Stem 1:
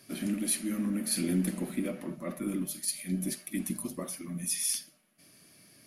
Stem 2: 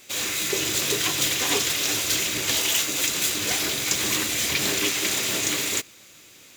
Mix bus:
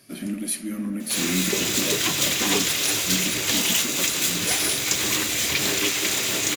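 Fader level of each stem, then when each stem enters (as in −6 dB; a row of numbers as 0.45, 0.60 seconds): +2.5, +1.0 decibels; 0.00, 1.00 seconds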